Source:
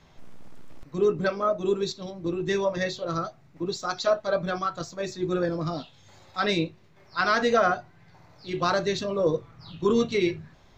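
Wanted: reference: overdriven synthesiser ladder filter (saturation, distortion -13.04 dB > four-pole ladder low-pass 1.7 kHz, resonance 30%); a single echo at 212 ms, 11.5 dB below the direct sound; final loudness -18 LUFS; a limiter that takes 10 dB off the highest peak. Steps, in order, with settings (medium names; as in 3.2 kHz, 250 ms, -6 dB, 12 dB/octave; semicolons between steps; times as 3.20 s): peak limiter -20 dBFS; delay 212 ms -11.5 dB; saturation -26.5 dBFS; four-pole ladder low-pass 1.7 kHz, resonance 30%; trim +22 dB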